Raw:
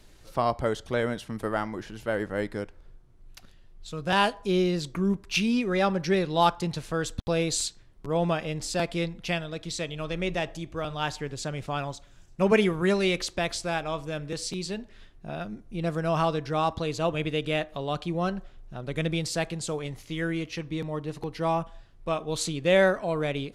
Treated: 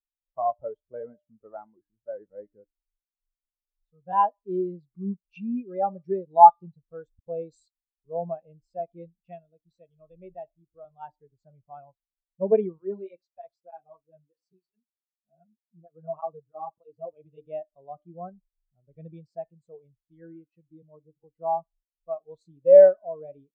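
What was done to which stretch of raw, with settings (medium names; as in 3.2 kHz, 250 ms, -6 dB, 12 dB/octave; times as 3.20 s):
12.78–17.38 s: cancelling through-zero flanger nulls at 1.6 Hz, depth 6.3 ms
whole clip: de-hum 298.9 Hz, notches 35; dynamic bell 800 Hz, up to +7 dB, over -40 dBFS, Q 1.1; spectral contrast expander 2.5:1; trim +3 dB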